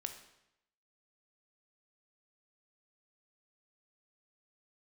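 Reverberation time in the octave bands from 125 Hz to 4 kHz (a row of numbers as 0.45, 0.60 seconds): 0.90, 0.80, 0.85, 0.85, 0.80, 0.75 seconds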